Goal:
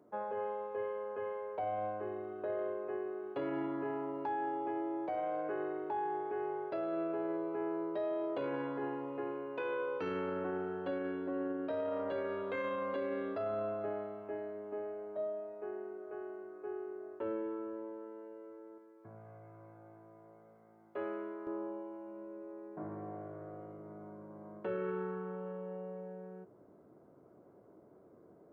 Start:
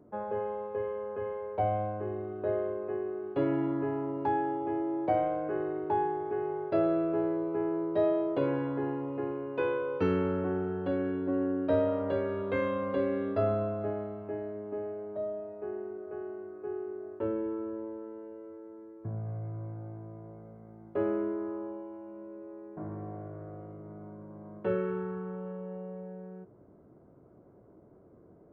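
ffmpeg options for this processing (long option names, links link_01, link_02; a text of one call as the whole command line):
ffmpeg -i in.wav -af "asetnsamples=nb_out_samples=441:pad=0,asendcmd='18.78 highpass f 1200;21.47 highpass f 310',highpass=frequency=570:poles=1,alimiter=level_in=5.5dB:limit=-24dB:level=0:latency=1:release=12,volume=-5.5dB" out.wav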